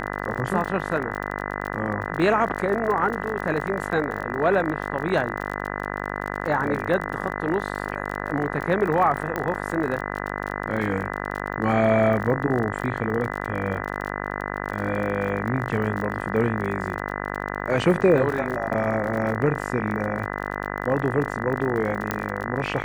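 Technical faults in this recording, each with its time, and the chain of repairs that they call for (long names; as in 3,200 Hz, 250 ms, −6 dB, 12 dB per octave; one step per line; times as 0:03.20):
mains buzz 50 Hz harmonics 40 −30 dBFS
surface crackle 39 per second −30 dBFS
0:09.36: click −13 dBFS
0:22.11: click −9 dBFS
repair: click removal
hum removal 50 Hz, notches 40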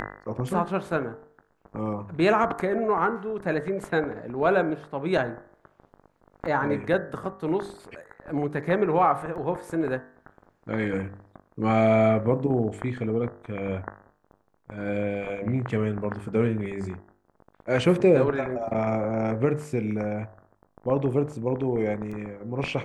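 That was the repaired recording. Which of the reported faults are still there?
0:09.36: click
0:22.11: click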